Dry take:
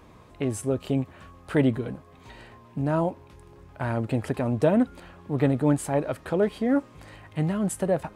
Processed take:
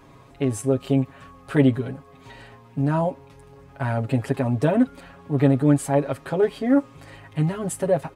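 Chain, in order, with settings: comb 7.3 ms, depth 85%

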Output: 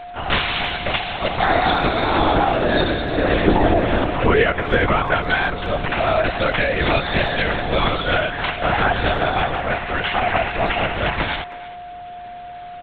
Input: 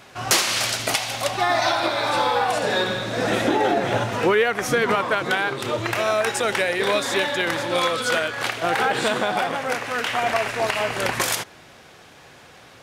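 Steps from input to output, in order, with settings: LPC vocoder at 8 kHz whisper; 1.49–4.11 bell 310 Hz +7.5 dB 0.8 oct; speakerphone echo 0.32 s, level -16 dB; whine 710 Hz -35 dBFS; gain +3 dB

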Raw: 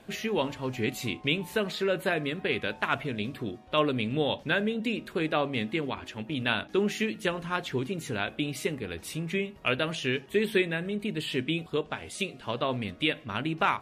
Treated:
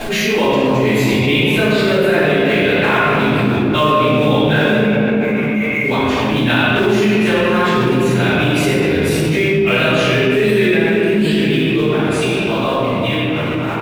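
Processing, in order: ending faded out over 3.34 s; 4.78–5.84 band-pass 2200 Hz, Q 14; early reflections 15 ms -14.5 dB, 33 ms -10 dB; in parallel at -10.5 dB: companded quantiser 4-bit; on the sum: reverb RT60 2.8 s, pre-delay 3 ms, DRR -19 dB; fast leveller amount 70%; gain -10.5 dB

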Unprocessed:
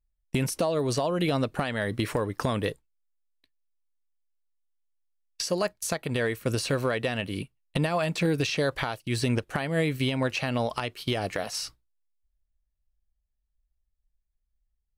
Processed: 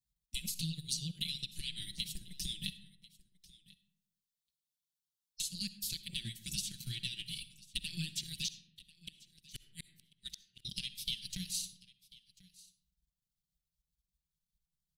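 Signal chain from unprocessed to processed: spectral gate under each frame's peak -10 dB weak; elliptic band-stop 170–3500 Hz, stop band 60 dB; high shelf 4900 Hz -3 dB; comb 5.7 ms, depth 92%; de-hum 49.81 Hz, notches 3; transient shaper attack +1 dB, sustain -11 dB; compressor 2:1, threshold -41 dBFS, peak gain reduction 6.5 dB; 8.48–10.65 flipped gate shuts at -34 dBFS, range -40 dB; echo 1.042 s -21.5 dB; digital reverb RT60 0.96 s, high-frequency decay 0.45×, pre-delay 25 ms, DRR 13 dB; gain +4 dB

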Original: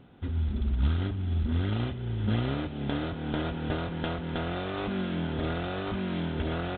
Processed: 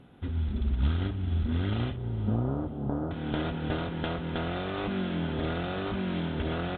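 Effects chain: 1.96–3.11 inverse Chebyshev low-pass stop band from 2300 Hz, stop band 40 dB; diffused feedback echo 0.471 s, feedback 42%, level -16 dB; on a send at -20.5 dB: reverb RT60 1.2 s, pre-delay 4 ms; on the sum: MP2 96 kbps 44100 Hz

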